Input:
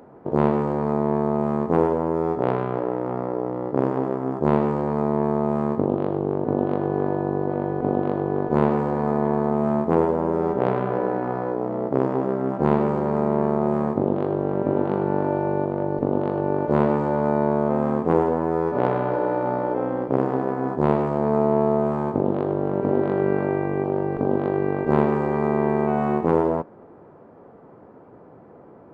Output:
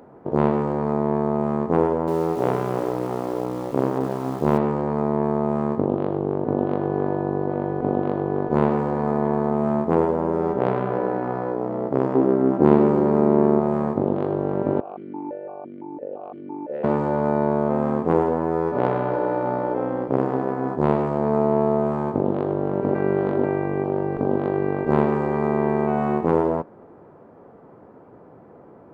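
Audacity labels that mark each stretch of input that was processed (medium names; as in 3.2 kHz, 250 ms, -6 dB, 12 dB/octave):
1.800000	4.580000	bit-crushed delay 275 ms, feedback 35%, word length 6-bit, level -10 dB
12.150000	13.600000	peaking EQ 310 Hz +9.5 dB 0.89 oct
14.800000	16.840000	stepped vowel filter 5.9 Hz
22.950000	23.440000	reverse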